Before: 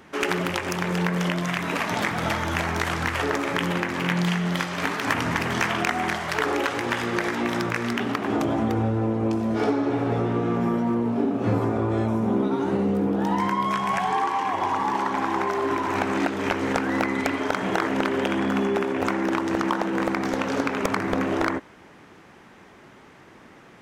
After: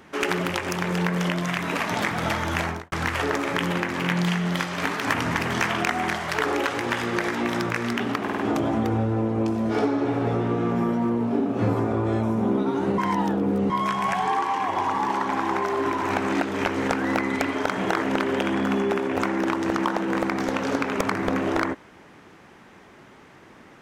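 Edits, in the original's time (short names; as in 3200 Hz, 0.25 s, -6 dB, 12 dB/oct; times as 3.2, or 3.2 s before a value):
2.63–2.92 studio fade out
8.23 stutter 0.05 s, 4 plays
12.83–13.55 reverse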